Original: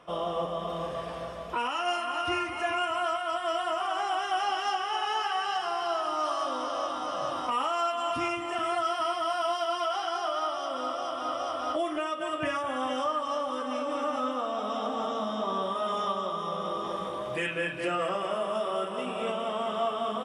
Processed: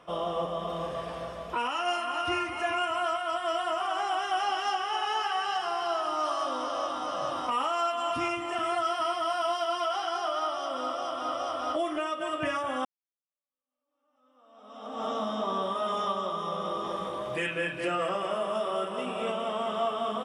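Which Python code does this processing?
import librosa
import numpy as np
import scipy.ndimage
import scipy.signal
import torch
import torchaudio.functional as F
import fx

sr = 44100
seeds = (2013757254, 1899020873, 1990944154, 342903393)

y = fx.edit(x, sr, fx.fade_in_span(start_s=12.85, length_s=2.22, curve='exp'), tone=tone)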